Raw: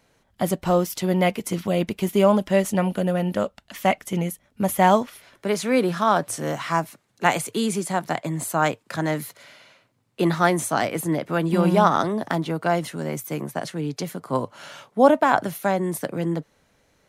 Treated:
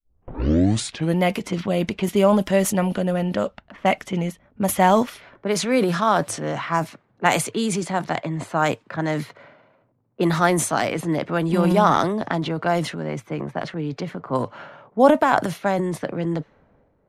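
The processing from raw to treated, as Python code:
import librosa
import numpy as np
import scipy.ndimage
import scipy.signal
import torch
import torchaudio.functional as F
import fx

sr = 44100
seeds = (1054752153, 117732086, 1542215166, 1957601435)

y = fx.tape_start_head(x, sr, length_s=1.2)
y = fx.env_lowpass(y, sr, base_hz=780.0, full_db=-17.5)
y = fx.transient(y, sr, attack_db=1, sustain_db=7)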